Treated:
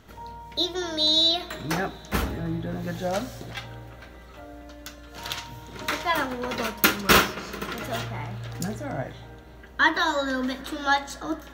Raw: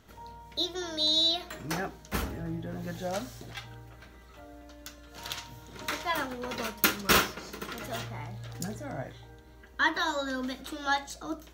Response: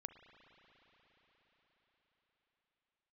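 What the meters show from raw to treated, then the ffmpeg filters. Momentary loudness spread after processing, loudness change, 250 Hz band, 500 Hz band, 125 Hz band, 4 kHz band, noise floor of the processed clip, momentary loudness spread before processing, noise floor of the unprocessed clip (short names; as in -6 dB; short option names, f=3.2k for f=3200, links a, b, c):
23 LU, +5.5 dB, +6.5 dB, +6.0 dB, +6.0 dB, +5.0 dB, -46 dBFS, 22 LU, -52 dBFS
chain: -filter_complex "[0:a]asplit=2[a][b];[1:a]atrim=start_sample=2205,lowpass=5.1k[c];[b][c]afir=irnorm=-1:irlink=0,volume=-3dB[d];[a][d]amix=inputs=2:normalize=0,volume=3.5dB"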